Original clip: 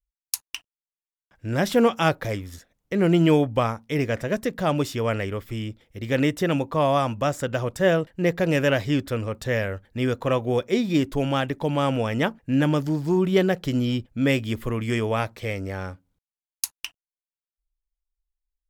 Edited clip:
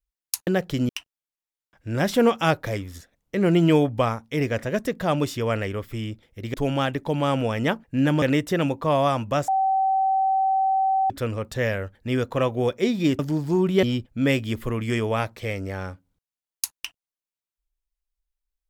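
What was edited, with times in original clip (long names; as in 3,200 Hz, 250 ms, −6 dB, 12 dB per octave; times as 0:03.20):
0:07.38–0:09.00: beep over 769 Hz −18 dBFS
0:11.09–0:12.77: move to 0:06.12
0:13.41–0:13.83: move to 0:00.47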